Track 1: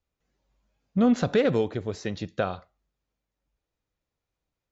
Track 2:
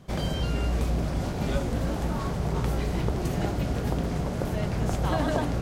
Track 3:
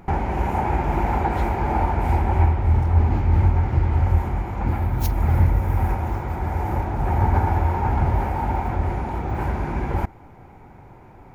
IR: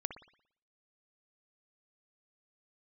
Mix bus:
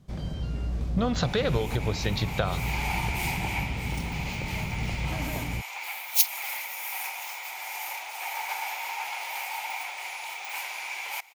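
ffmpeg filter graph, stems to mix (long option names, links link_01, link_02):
-filter_complex "[0:a]equalizer=frequency=125:width_type=o:width=1:gain=10,equalizer=frequency=250:width_type=o:width=1:gain=-8,equalizer=frequency=1000:width_type=o:width=1:gain=6,equalizer=frequency=4000:width_type=o:width=1:gain=10,acompressor=threshold=-25dB:ratio=6,volume=2dB,asplit=2[link_01][link_02];[1:a]acrossover=split=5200[link_03][link_04];[link_04]acompressor=threshold=-58dB:ratio=4:attack=1:release=60[link_05];[link_03][link_05]amix=inputs=2:normalize=0,bass=frequency=250:gain=9,treble=frequency=4000:gain=6,volume=-12dB[link_06];[2:a]highpass=frequency=740:width=0.5412,highpass=frequency=740:width=1.3066,equalizer=frequency=2300:width=2.1:gain=6,aexciter=amount=5.5:drive=9.3:freq=2400,adelay=1150,volume=-8.5dB[link_07];[link_02]apad=whole_len=550810[link_08];[link_07][link_08]sidechaincompress=threshold=-42dB:ratio=3:attack=40:release=183[link_09];[link_01][link_06][link_09]amix=inputs=3:normalize=0"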